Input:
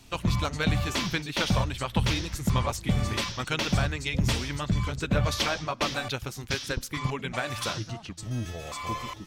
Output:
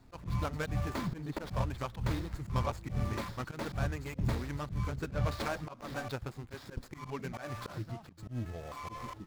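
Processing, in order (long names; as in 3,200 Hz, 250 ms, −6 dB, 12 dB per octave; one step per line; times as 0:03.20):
running median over 15 samples
0:01.07–0:01.47: tilt shelving filter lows +4 dB
volume swells 108 ms
level −4.5 dB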